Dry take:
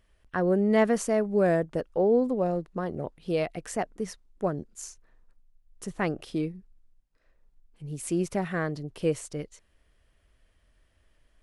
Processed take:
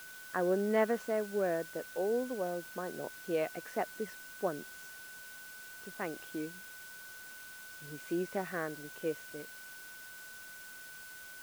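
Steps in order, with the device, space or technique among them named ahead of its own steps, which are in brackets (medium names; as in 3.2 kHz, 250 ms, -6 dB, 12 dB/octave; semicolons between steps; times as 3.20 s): shortwave radio (band-pass 270–2900 Hz; tremolo 0.26 Hz, depth 46%; whistle 1.5 kHz -45 dBFS; white noise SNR 15 dB); trim -4 dB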